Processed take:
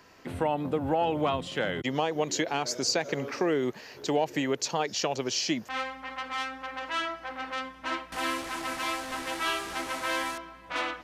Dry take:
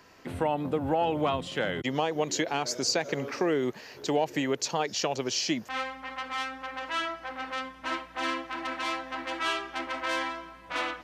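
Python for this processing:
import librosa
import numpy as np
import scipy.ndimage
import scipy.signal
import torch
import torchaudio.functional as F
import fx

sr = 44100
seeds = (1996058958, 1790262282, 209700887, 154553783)

y = fx.delta_mod(x, sr, bps=64000, step_db=-32.0, at=(8.12, 10.38))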